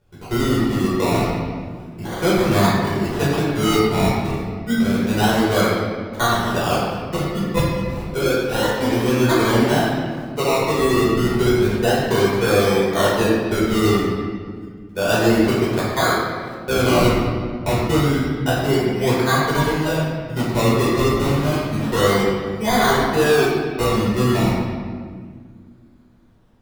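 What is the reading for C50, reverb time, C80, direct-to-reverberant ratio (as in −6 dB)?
−1.5 dB, 1.8 s, 1.0 dB, −8.0 dB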